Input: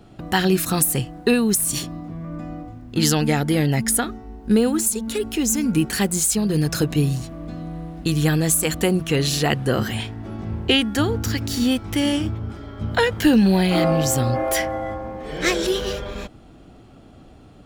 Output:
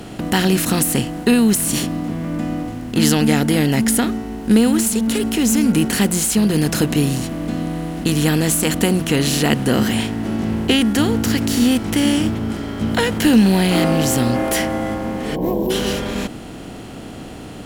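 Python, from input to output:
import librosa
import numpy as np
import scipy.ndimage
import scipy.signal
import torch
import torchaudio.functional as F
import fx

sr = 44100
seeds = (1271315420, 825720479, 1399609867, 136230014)

y = fx.bin_compress(x, sr, power=0.6)
y = fx.dynamic_eq(y, sr, hz=230.0, q=2.4, threshold_db=-32.0, ratio=4.0, max_db=6)
y = fx.spec_box(y, sr, start_s=15.36, length_s=0.34, low_hz=1100.0, high_hz=12000.0, gain_db=-26)
y = F.gain(torch.from_numpy(y), -2.5).numpy()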